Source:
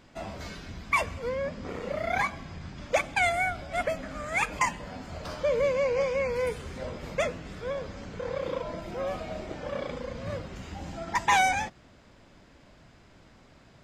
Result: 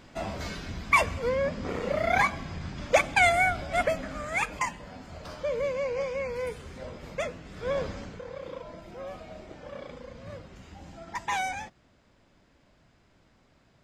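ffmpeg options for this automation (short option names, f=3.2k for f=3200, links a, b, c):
-af "volume=13.5dB,afade=t=out:st=3.68:d=0.98:silence=0.398107,afade=t=in:st=7.52:d=0.28:silence=0.334965,afade=t=out:st=7.8:d=0.44:silence=0.223872"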